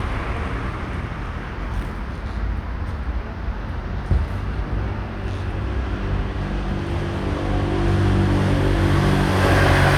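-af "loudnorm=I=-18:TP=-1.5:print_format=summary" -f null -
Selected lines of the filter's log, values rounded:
Input Integrated:    -21.6 LUFS
Input True Peak:      -4.3 dBTP
Input LRA:             9.2 LU
Input Threshold:     -31.6 LUFS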